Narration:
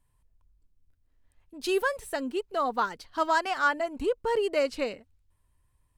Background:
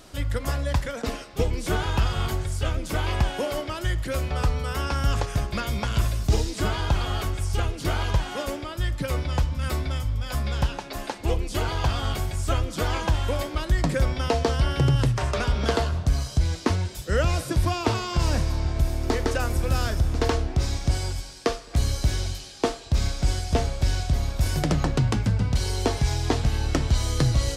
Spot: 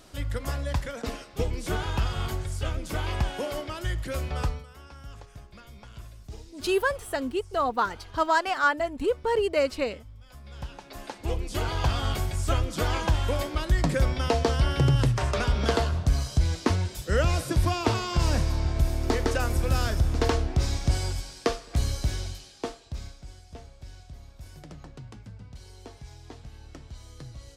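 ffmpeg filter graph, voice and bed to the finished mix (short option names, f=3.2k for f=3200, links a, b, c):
-filter_complex "[0:a]adelay=5000,volume=2dB[a];[1:a]volume=15.5dB,afade=t=out:st=4.44:d=0.22:silence=0.149624,afade=t=in:st=10.42:d=1.49:silence=0.105925,afade=t=out:st=21.39:d=1.85:silence=0.0944061[b];[a][b]amix=inputs=2:normalize=0"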